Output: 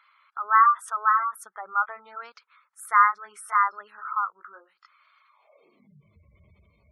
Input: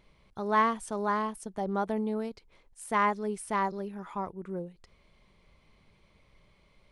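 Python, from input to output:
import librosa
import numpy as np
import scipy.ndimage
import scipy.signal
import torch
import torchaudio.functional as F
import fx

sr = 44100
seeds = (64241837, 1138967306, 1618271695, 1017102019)

y = fx.pitch_ramps(x, sr, semitones=1.0, every_ms=1439)
y = fx.filter_sweep_highpass(y, sr, from_hz=1300.0, to_hz=77.0, start_s=5.28, end_s=6.18, q=6.6)
y = fx.spec_gate(y, sr, threshold_db=-20, keep='strong')
y = y * librosa.db_to_amplitude(3.0)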